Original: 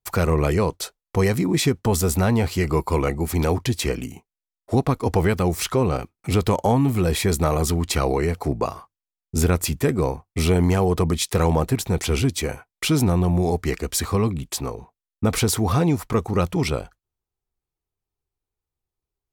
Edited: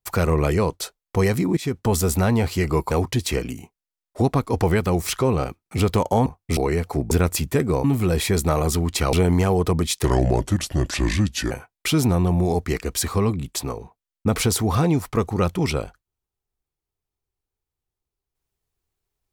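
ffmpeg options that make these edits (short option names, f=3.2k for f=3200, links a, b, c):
-filter_complex "[0:a]asplit=10[a][b][c][d][e][f][g][h][i][j];[a]atrim=end=1.57,asetpts=PTS-STARTPTS,afade=t=out:st=1.566:d=0.004:c=hsin:silence=0.0891251[k];[b]atrim=start=1.57:end=2.912,asetpts=PTS-STARTPTS,afade=t=in:d=0.34:c=qsin:silence=0.0891251[l];[c]atrim=start=3.438:end=6.792[m];[d]atrim=start=10.128:end=10.442[n];[e]atrim=start=8.078:end=8.622[o];[f]atrim=start=9.398:end=10.132[p];[g]atrim=start=6.788:end=8.082[q];[h]atrim=start=10.438:end=11.354[r];[i]atrim=start=11.35:end=12.48,asetpts=PTS-STARTPTS,asetrate=33957,aresample=44100,atrim=end_sample=64718,asetpts=PTS-STARTPTS[s];[j]atrim=start=12.476[t];[k][l]concat=n=2:v=0:a=1[u];[u][m]acrossfade=d=0.004:c1=hsin:c2=hsin[v];[v][n]acrossfade=d=0.004:c1=hsin:c2=hsin[w];[w][o]acrossfade=d=0.004:c1=hsin:c2=hsin[x];[x][p]acrossfade=d=0.004:c1=hsin:c2=hsin[y];[y][q]acrossfade=d=0.004:c1=hsin:c2=hsin[z];[z][r]acrossfade=d=0.004:c1=hsin:c2=hsin[aa];[aa][s]acrossfade=d=0.004:c1=hsin:c2=hsin[ab];[ab][t]acrossfade=d=0.004:c1=hsin:c2=hsin"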